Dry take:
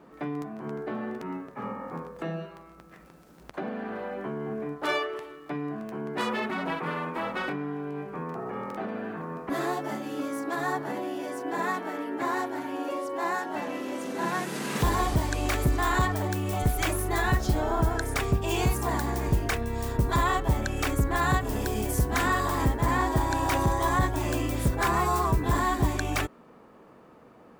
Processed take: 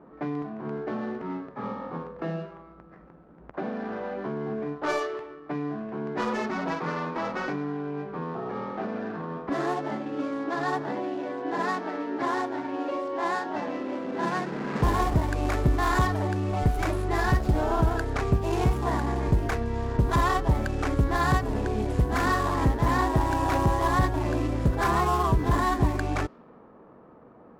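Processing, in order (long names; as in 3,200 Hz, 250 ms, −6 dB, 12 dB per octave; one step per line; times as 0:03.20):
running median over 15 samples
low-pass that shuts in the quiet parts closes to 1,500 Hz, open at −22.5 dBFS
level +2 dB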